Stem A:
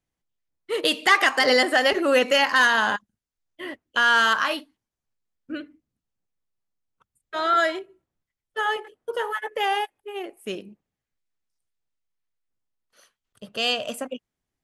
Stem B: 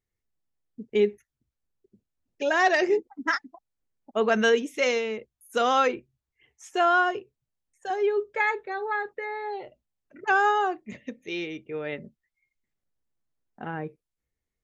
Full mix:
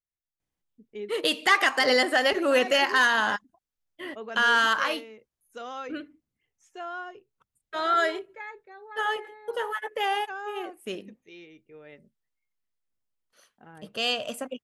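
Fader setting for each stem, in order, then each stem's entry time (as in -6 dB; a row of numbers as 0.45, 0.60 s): -3.0, -15.5 dB; 0.40, 0.00 s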